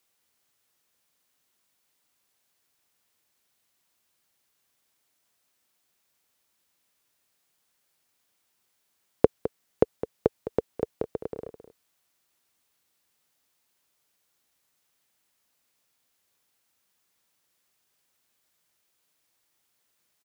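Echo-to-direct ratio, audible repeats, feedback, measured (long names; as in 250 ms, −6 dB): −12.0 dB, 1, repeats not evenly spaced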